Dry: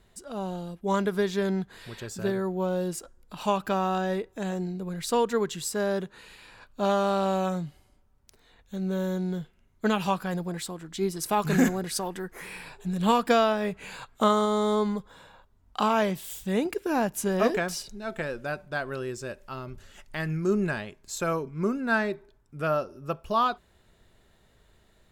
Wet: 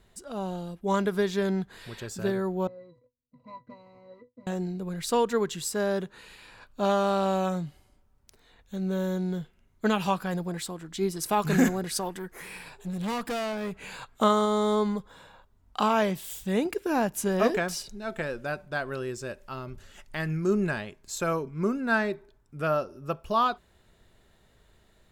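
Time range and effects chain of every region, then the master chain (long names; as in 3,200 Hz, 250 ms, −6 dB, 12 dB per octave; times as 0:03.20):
0:02.67–0:04.47: running median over 41 samples + noise gate −50 dBFS, range −15 dB + resonances in every octave B, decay 0.14 s
0:12.09–0:13.76: high-shelf EQ 6,700 Hz +3.5 dB + tube saturation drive 28 dB, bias 0.45
whole clip: no processing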